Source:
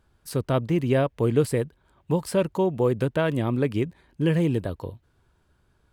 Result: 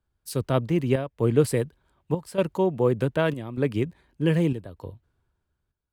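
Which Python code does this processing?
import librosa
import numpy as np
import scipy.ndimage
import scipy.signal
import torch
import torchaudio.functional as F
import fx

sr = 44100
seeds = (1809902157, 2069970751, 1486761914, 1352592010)

y = fx.chopper(x, sr, hz=0.84, depth_pct=60, duty_pct=80)
y = fx.band_widen(y, sr, depth_pct=40)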